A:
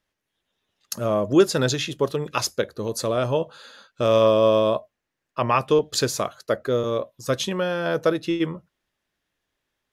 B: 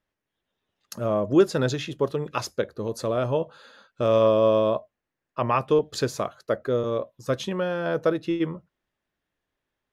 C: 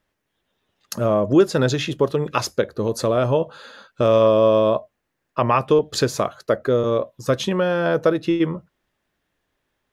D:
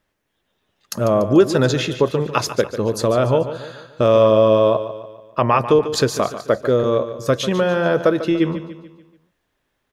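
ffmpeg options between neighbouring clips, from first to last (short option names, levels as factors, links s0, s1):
-af "highshelf=f=2900:g=-9.5,volume=0.841"
-af "acompressor=threshold=0.0398:ratio=1.5,volume=2.66"
-af "aecho=1:1:145|290|435|580|725:0.251|0.118|0.0555|0.0261|0.0123,volume=1.26"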